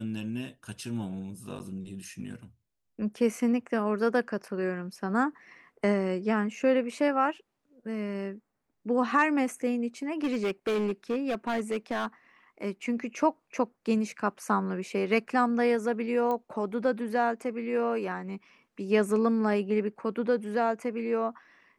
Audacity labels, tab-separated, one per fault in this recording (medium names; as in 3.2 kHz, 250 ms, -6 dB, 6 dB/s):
1.590000	1.600000	dropout 9.3 ms
10.230000	12.060000	clipped -24 dBFS
16.310000	16.310000	pop -20 dBFS